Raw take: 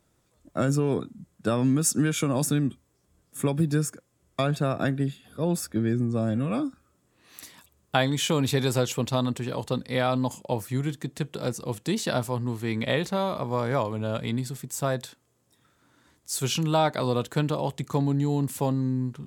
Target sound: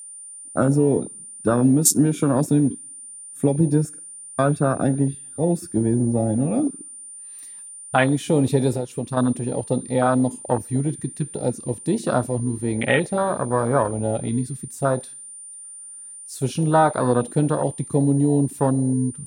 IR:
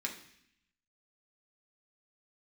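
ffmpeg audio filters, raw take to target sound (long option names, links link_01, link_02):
-filter_complex "[0:a]aeval=exprs='val(0)+0.0355*sin(2*PI*9200*n/s)':channel_layout=same,asettb=1/sr,asplit=3[link_01][link_02][link_03];[link_01]atrim=end=8.724[link_04];[link_02]atrim=start=8.72:end=9.17,asetpts=PTS-STARTPTS,afade=type=in:duration=0.004:curve=qsin,afade=type=out:start_time=0.446:duration=0.004:curve=qsin,acompressor=threshold=-27dB:ratio=6[link_05];[link_03]atrim=start=9.166[link_06];[link_04][link_05]acrossfade=duration=0.004:curve1=hsin:curve2=qsin[link_07];[link_07][link_06]acrossfade=duration=0.004:curve1=qsin:curve2=hsin,asplit=2[link_08][link_09];[1:a]atrim=start_sample=2205,lowshelf=frequency=230:gain=-11[link_10];[link_09][link_10]afir=irnorm=-1:irlink=0,volume=-6.5dB[link_11];[link_08][link_11]amix=inputs=2:normalize=0,apsyclip=8dB,afwtdn=0.141,volume=-2dB"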